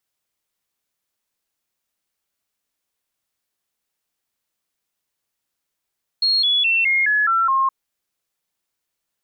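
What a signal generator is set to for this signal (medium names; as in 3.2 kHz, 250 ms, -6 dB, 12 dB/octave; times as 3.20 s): stepped sine 4.28 kHz down, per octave 3, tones 7, 0.21 s, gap 0.00 s -14.5 dBFS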